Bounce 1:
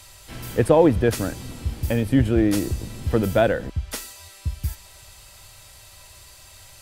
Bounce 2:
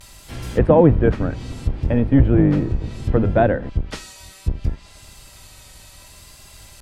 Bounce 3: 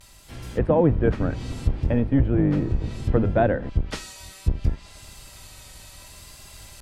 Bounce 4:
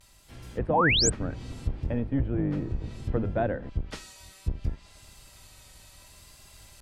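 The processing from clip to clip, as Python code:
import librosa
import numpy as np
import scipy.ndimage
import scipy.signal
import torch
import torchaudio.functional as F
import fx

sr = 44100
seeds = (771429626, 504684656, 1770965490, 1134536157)

y1 = fx.octave_divider(x, sr, octaves=1, level_db=1.0)
y1 = fx.vibrato(y1, sr, rate_hz=0.66, depth_cents=52.0)
y1 = fx.env_lowpass_down(y1, sr, base_hz=1800.0, full_db=-17.5)
y1 = F.gain(torch.from_numpy(y1), 2.0).numpy()
y2 = fx.rider(y1, sr, range_db=3, speed_s=0.5)
y2 = F.gain(torch.from_numpy(y2), -3.5).numpy()
y3 = fx.spec_paint(y2, sr, seeds[0], shape='rise', start_s=0.73, length_s=0.37, low_hz=660.0, high_hz=8500.0, level_db=-16.0)
y3 = F.gain(torch.from_numpy(y3), -7.5).numpy()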